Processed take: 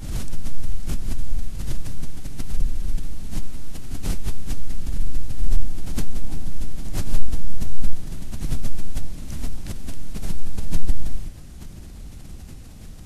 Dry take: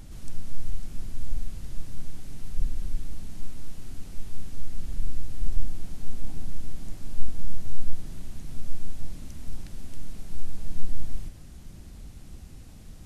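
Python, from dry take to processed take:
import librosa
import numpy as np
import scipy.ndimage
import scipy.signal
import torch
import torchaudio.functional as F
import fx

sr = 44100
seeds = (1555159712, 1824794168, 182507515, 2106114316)

y = fx.pre_swell(x, sr, db_per_s=69.0)
y = F.gain(torch.from_numpy(y), 4.5).numpy()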